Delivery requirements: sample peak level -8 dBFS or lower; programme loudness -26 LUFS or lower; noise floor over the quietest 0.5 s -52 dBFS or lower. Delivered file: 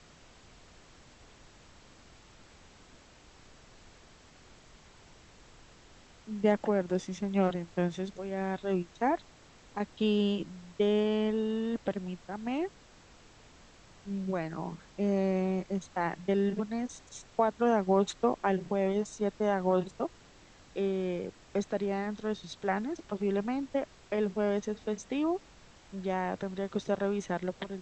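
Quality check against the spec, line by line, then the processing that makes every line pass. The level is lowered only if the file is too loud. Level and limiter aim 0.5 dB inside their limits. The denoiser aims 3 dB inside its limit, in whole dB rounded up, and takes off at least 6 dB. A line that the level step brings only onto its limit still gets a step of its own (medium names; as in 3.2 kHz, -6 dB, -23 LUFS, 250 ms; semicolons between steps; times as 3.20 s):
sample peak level -13.5 dBFS: pass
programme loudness -32.0 LUFS: pass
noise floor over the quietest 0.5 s -57 dBFS: pass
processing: none needed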